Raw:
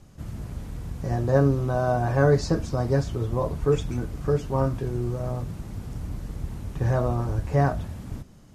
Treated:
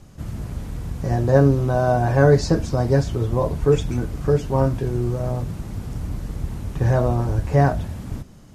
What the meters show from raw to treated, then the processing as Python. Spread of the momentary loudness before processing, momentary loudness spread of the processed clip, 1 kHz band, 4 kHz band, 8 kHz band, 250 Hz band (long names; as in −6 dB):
15 LU, 15 LU, +4.5 dB, +5.0 dB, +5.0 dB, +5.0 dB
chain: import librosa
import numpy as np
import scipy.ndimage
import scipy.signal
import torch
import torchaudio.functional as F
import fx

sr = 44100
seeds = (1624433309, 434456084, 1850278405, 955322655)

y = fx.dynamic_eq(x, sr, hz=1200.0, q=6.4, threshold_db=-51.0, ratio=4.0, max_db=-6)
y = y * 10.0 ** (5.0 / 20.0)